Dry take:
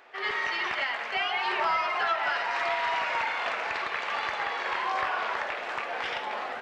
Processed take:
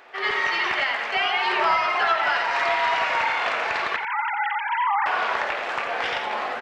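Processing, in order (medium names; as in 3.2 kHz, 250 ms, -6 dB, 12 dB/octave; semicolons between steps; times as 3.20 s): 3.96–5.06 s: formants replaced by sine waves; echo from a far wall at 15 m, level -8 dB; trim +5.5 dB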